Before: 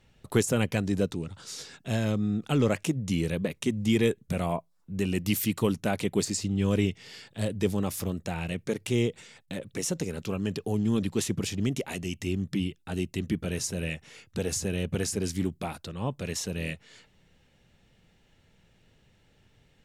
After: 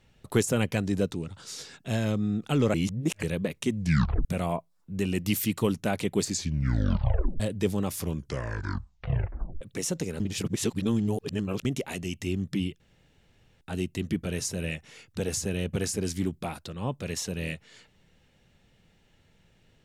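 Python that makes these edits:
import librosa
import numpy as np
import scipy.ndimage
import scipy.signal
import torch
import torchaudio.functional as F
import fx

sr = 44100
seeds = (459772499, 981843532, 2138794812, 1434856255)

y = fx.edit(x, sr, fx.reverse_span(start_s=2.74, length_s=0.49),
    fx.tape_stop(start_s=3.79, length_s=0.46),
    fx.tape_stop(start_s=6.28, length_s=1.12),
    fx.tape_stop(start_s=7.93, length_s=1.68),
    fx.reverse_span(start_s=10.2, length_s=1.45),
    fx.insert_room_tone(at_s=12.8, length_s=0.81), tone=tone)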